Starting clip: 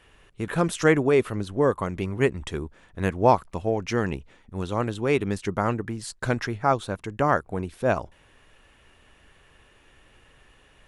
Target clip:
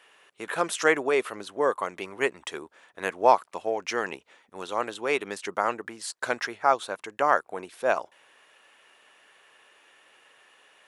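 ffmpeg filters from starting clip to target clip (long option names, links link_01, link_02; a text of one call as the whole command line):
ffmpeg -i in.wav -af "highpass=550,volume=1.5dB" out.wav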